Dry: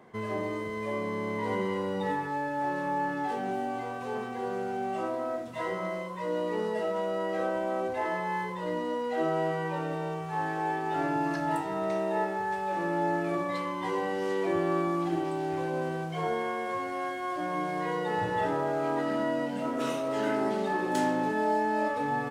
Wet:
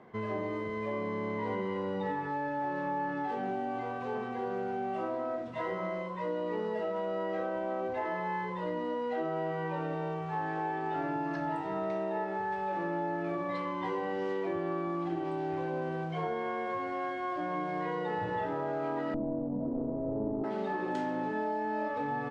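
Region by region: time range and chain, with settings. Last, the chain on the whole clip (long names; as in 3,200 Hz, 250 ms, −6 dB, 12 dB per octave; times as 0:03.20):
0:19.14–0:20.44: running median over 41 samples + inverse Chebyshev low-pass filter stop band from 4,100 Hz, stop band 70 dB + spectral tilt −2.5 dB per octave
whole clip: low-pass filter 5,000 Hz 12 dB per octave; high-shelf EQ 3,600 Hz −7 dB; downward compressor, threshold −30 dBFS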